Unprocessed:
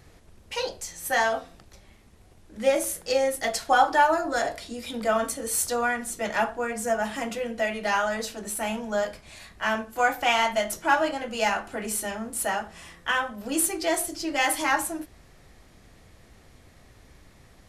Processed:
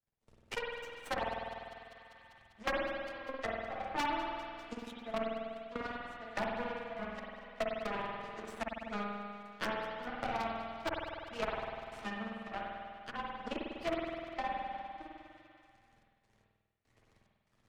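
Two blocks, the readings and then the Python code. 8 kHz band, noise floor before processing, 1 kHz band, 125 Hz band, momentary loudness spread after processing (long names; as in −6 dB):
−29.0 dB, −55 dBFS, −13.0 dB, −5.5 dB, 10 LU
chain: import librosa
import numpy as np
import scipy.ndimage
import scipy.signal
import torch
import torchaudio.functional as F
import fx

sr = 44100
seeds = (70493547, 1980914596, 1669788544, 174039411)

p1 = fx.lower_of_two(x, sr, delay_ms=8.9)
p2 = scipy.signal.sosfilt(scipy.signal.butter(2, 8700.0, 'lowpass', fs=sr, output='sos'), p1)
p3 = fx.env_lowpass_down(p2, sr, base_hz=950.0, full_db=-23.5)
p4 = fx.transient(p3, sr, attack_db=5, sustain_db=-1)
p5 = fx.power_curve(p4, sr, exponent=2.0)
p6 = 10.0 ** (-22.5 / 20.0) * np.tanh(p5 / 10.0 ** (-22.5 / 20.0))
p7 = p5 + (p6 * librosa.db_to_amplitude(-7.0))
p8 = fx.step_gate(p7, sr, bpm=73, pattern='.xx.xx.x.', floor_db=-24.0, edge_ms=4.5)
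p9 = 10.0 ** (-22.0 / 20.0) * (np.abs((p8 / 10.0 ** (-22.0 / 20.0) + 3.0) % 4.0 - 2.0) - 1.0)
p10 = p9 + fx.echo_thinned(p9, sr, ms=198, feedback_pct=54, hz=420.0, wet_db=-19.0, dry=0)
p11 = fx.rev_spring(p10, sr, rt60_s=1.2, pass_ms=(49,), chirp_ms=45, drr_db=-2.0)
p12 = fx.band_squash(p11, sr, depth_pct=70)
y = p12 * librosa.db_to_amplitude(-2.0)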